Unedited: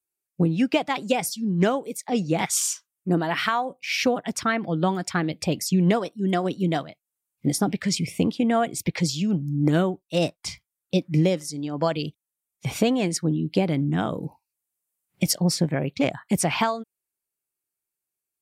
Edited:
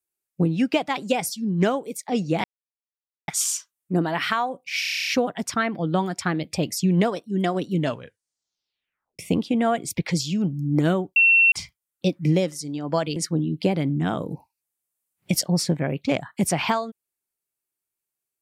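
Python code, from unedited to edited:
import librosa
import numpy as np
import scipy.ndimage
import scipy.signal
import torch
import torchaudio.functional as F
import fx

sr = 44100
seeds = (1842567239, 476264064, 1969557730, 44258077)

y = fx.edit(x, sr, fx.insert_silence(at_s=2.44, length_s=0.84),
    fx.stutter(start_s=3.96, slice_s=0.03, count=10),
    fx.tape_stop(start_s=6.61, length_s=1.47),
    fx.bleep(start_s=10.05, length_s=0.36, hz=2710.0, db=-12.5),
    fx.cut(start_s=12.05, length_s=1.03), tone=tone)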